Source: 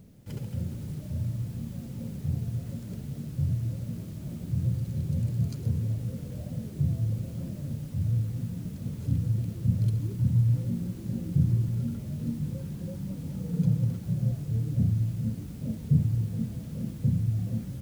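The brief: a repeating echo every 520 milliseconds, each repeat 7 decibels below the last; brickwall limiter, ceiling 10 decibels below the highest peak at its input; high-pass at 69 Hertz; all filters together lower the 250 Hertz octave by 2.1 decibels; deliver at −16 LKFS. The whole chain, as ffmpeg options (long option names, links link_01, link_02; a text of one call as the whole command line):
ffmpeg -i in.wav -af "highpass=69,equalizer=frequency=250:width_type=o:gain=-3.5,alimiter=limit=-23dB:level=0:latency=1,aecho=1:1:520|1040|1560|2080|2600:0.447|0.201|0.0905|0.0407|0.0183,volume=17dB" out.wav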